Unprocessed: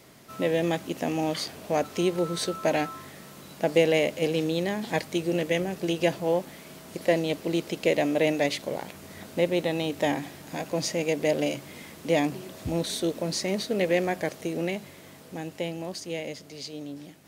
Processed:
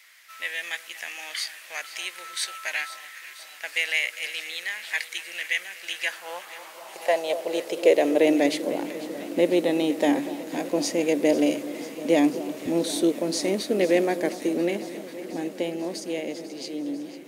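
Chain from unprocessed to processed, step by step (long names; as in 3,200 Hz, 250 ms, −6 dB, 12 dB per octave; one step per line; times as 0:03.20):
dynamic equaliser 9,900 Hz, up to +5 dB, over −53 dBFS, Q 1.4
on a send: delay that swaps between a low-pass and a high-pass 247 ms, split 1,200 Hz, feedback 86%, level −14 dB
on the sum: high-pass filter sweep 1,900 Hz → 280 Hz, 0:05.84–0:08.49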